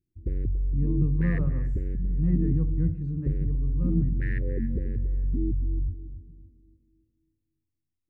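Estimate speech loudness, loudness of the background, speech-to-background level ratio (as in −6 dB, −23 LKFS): −30.5 LKFS, −30.0 LKFS, −0.5 dB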